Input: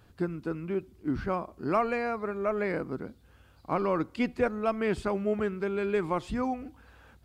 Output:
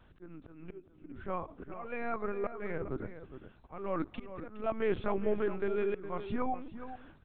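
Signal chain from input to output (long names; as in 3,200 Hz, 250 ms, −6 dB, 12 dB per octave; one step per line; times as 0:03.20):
linear-prediction vocoder at 8 kHz pitch kept
volume swells 408 ms
slap from a distant wall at 71 metres, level −11 dB
level −2 dB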